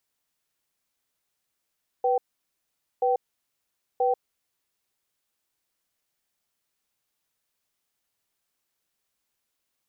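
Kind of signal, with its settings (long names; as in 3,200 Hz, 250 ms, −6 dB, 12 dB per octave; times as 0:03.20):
tone pair in a cadence 493 Hz, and 773 Hz, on 0.14 s, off 0.84 s, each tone −22.5 dBFS 2.36 s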